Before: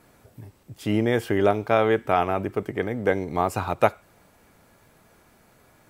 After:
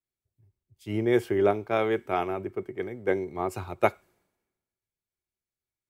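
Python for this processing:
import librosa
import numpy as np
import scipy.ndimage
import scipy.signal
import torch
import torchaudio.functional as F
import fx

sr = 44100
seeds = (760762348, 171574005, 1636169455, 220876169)

y = fx.small_body(x, sr, hz=(370.0, 2200.0), ring_ms=85, db=12)
y = fx.band_widen(y, sr, depth_pct=100)
y = y * 10.0 ** (-8.0 / 20.0)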